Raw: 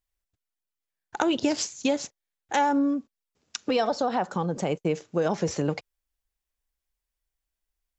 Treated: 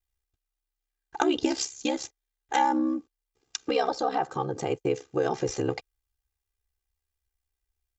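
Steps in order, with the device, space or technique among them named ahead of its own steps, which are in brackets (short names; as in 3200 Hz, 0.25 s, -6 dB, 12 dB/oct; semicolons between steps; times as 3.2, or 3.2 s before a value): ring-modulated robot voice (ring modulator 33 Hz; comb 2.5 ms, depth 69%)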